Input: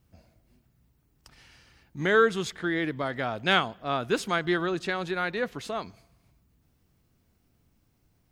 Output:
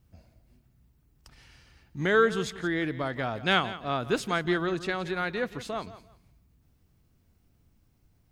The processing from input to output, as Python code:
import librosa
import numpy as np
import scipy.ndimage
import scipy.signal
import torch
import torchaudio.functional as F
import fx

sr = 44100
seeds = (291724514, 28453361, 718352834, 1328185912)

p1 = fx.low_shelf(x, sr, hz=120.0, db=7.0)
p2 = p1 + fx.echo_feedback(p1, sr, ms=171, feedback_pct=22, wet_db=-15.5, dry=0)
y = p2 * librosa.db_to_amplitude(-1.5)